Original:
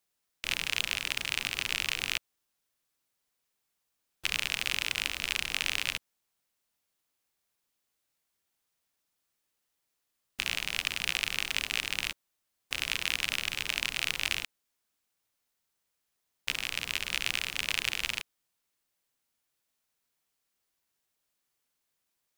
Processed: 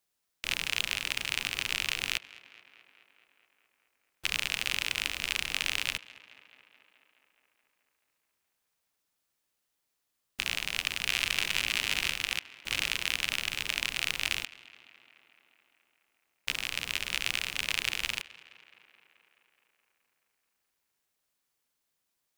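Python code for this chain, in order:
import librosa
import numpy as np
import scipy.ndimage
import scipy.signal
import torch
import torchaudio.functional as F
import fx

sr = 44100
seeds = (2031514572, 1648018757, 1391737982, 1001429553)

y = fx.reverse_delay(x, sr, ms=650, wet_db=-1.0, at=(10.44, 12.89))
y = fx.echo_tape(y, sr, ms=213, feedback_pct=78, wet_db=-19.0, lp_hz=4200.0, drive_db=7.0, wow_cents=24)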